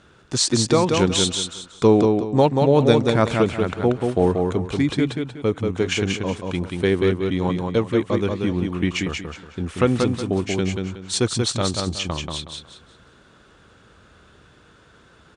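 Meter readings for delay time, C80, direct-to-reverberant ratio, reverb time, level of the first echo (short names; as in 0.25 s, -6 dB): 0.184 s, none, none, none, -4.0 dB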